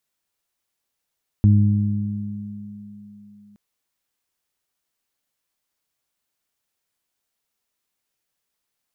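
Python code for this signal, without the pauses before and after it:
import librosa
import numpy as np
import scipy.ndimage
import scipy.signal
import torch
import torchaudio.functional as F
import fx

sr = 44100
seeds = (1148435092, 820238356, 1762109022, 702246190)

y = fx.additive(sr, length_s=2.12, hz=103.0, level_db=-10, upper_db=(-6.0, -19.5), decay_s=2.39, upper_decays_s=(4.07, 2.06))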